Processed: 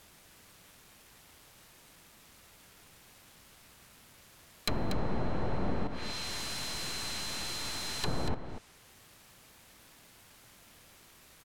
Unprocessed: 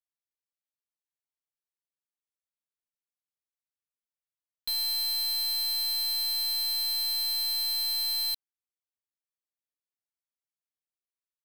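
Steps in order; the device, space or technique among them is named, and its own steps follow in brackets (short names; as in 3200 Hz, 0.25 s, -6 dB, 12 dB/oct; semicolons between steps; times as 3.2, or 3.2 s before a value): 5.87–8.04 expander -22 dBFS; early CD player with a faulty converter (zero-crossing step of -52.5 dBFS; clock jitter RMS 0.046 ms); treble ducked by the level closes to 680 Hz, closed at -29.5 dBFS; tone controls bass +7 dB, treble -1 dB; echo 0.238 s -9.5 dB; gain +8 dB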